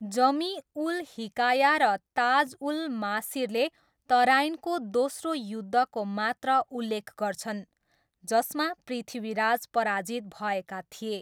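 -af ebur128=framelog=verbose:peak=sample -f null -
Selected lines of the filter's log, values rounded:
Integrated loudness:
  I:         -27.9 LUFS
  Threshold: -38.1 LUFS
Loudness range:
  LRA:         4.1 LU
  Threshold: -48.2 LUFS
  LRA low:   -30.5 LUFS
  LRA high:  -26.3 LUFS
Sample peak:
  Peak:      -10.6 dBFS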